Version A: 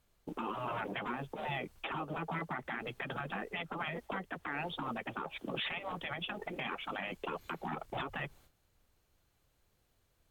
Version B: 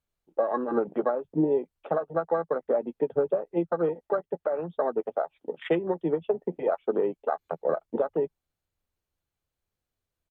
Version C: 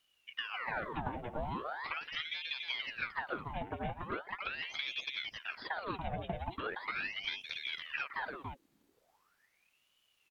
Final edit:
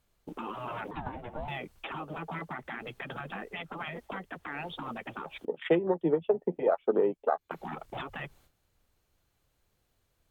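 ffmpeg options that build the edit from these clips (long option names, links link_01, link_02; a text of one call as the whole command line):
ffmpeg -i take0.wav -i take1.wav -i take2.wav -filter_complex "[0:a]asplit=3[link_01][link_02][link_03];[link_01]atrim=end=0.912[link_04];[2:a]atrim=start=0.908:end=1.482[link_05];[link_02]atrim=start=1.478:end=5.452[link_06];[1:a]atrim=start=5.448:end=7.512[link_07];[link_03]atrim=start=7.508[link_08];[link_04][link_05]acrossfade=duration=0.004:curve1=hsin:curve2=hsin[link_09];[link_09][link_06]acrossfade=duration=0.004:curve1=hsin:curve2=hsin[link_10];[link_10][link_07]acrossfade=duration=0.004:curve1=hsin:curve2=hsin[link_11];[link_11][link_08]acrossfade=duration=0.004:curve1=hsin:curve2=hsin" out.wav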